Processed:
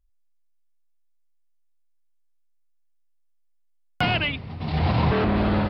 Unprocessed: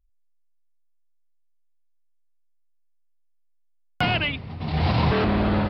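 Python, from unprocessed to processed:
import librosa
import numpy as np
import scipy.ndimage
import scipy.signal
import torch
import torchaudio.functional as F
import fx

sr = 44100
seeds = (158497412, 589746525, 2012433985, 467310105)

y = fx.high_shelf(x, sr, hz=5000.0, db=-10.5, at=(4.79, 5.36))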